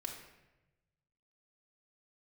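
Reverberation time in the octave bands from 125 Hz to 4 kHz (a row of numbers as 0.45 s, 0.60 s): 1.8 s, 1.2 s, 1.1 s, 0.95 s, 1.0 s, 0.75 s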